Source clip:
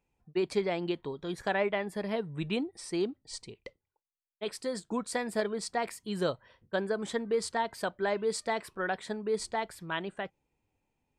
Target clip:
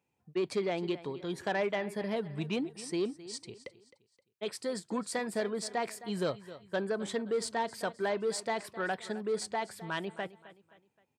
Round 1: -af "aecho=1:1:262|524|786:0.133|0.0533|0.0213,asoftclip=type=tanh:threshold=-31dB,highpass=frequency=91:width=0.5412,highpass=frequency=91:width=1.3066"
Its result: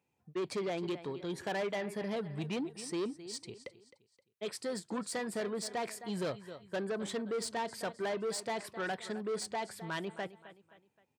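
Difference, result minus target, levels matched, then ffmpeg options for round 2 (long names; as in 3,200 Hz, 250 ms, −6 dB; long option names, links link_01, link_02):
soft clipping: distortion +8 dB
-af "aecho=1:1:262|524|786:0.133|0.0533|0.0213,asoftclip=type=tanh:threshold=-23.5dB,highpass=frequency=91:width=0.5412,highpass=frequency=91:width=1.3066"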